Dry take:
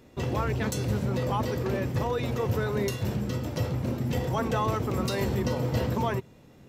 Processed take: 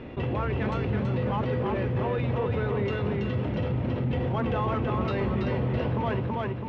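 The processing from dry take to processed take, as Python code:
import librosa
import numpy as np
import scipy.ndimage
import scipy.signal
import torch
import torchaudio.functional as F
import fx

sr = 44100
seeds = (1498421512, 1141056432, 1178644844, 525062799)

p1 = scipy.signal.sosfilt(scipy.signal.cheby1(3, 1.0, 2900.0, 'lowpass', fs=sr, output='sos'), x)
p2 = 10.0 ** (-26.5 / 20.0) * np.tanh(p1 / 10.0 ** (-26.5 / 20.0))
p3 = p1 + (p2 * 10.0 ** (-4.0 / 20.0))
p4 = fx.echo_feedback(p3, sr, ms=329, feedback_pct=32, wet_db=-3.5)
p5 = fx.env_flatten(p4, sr, amount_pct=50)
y = p5 * 10.0 ** (-5.5 / 20.0)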